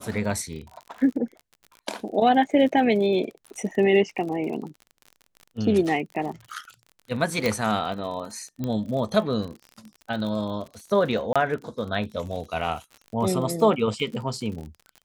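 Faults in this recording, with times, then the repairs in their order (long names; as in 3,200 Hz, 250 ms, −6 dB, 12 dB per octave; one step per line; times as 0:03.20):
surface crackle 43 per second −34 dBFS
0:07.46: click −10 dBFS
0:08.64: click −17 dBFS
0:11.33–0:11.36: drop-out 26 ms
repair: click removal
repair the gap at 0:11.33, 26 ms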